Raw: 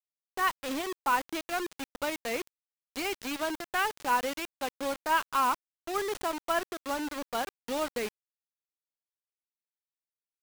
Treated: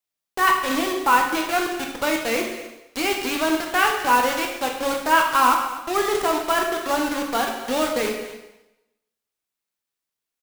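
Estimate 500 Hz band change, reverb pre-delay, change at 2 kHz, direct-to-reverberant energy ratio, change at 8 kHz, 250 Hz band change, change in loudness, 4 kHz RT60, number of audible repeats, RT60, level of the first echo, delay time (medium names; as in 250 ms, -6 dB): +10.5 dB, 7 ms, +10.5 dB, 1.0 dB, +10.5 dB, +11.0 dB, +10.5 dB, 0.95 s, 1, 0.95 s, -15.5 dB, 247 ms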